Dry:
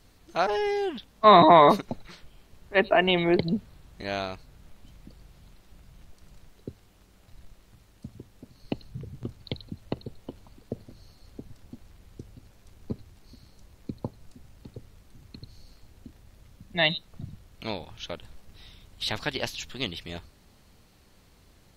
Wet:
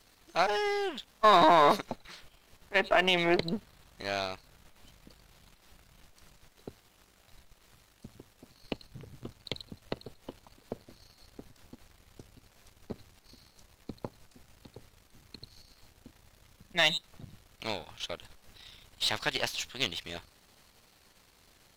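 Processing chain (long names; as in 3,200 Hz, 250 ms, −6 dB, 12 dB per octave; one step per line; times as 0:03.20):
gain on one half-wave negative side −7 dB
low-shelf EQ 410 Hz −11.5 dB
brickwall limiter −14.5 dBFS, peak gain reduction 7 dB
level +4 dB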